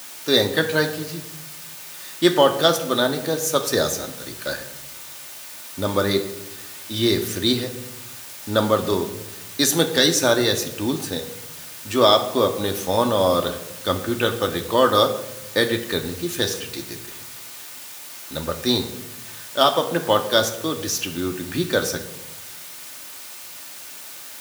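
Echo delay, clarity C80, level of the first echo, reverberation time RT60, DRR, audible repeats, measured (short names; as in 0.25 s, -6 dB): none, 13.5 dB, none, 0.95 s, 4.0 dB, none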